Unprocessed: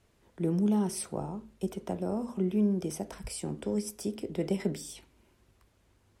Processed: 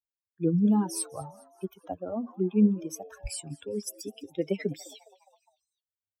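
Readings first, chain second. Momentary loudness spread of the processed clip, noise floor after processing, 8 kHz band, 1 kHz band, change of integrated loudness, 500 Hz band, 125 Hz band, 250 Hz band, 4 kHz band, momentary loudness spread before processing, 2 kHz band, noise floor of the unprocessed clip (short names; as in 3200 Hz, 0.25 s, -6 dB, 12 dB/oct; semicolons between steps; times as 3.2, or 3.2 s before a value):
17 LU, under -85 dBFS, +2.5 dB, +1.5 dB, +3.0 dB, +0.5 dB, +1.5 dB, +3.0 dB, +1.0 dB, 11 LU, +1.5 dB, -68 dBFS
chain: per-bin expansion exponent 3; frequency-shifting echo 0.205 s, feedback 54%, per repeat +120 Hz, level -22.5 dB; gain +8 dB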